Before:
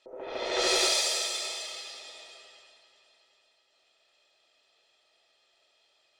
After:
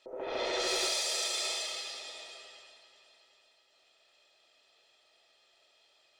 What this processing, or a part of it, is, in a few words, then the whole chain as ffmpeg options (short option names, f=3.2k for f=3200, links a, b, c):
clipper into limiter: -af "asoftclip=type=hard:threshold=-18dB,alimiter=level_in=1.5dB:limit=-24dB:level=0:latency=1:release=19,volume=-1.5dB,volume=1.5dB"